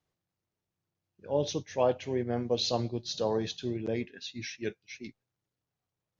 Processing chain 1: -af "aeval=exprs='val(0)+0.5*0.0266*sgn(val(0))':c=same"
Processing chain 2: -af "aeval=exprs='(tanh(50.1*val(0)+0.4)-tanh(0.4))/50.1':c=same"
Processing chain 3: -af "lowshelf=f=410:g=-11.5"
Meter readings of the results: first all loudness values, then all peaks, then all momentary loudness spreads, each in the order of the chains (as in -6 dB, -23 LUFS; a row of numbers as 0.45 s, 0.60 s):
-31.0 LUFS, -39.5 LUFS, -36.0 LUFS; -13.0 dBFS, -31.0 dBFS, -18.0 dBFS; 11 LU, 10 LU, 11 LU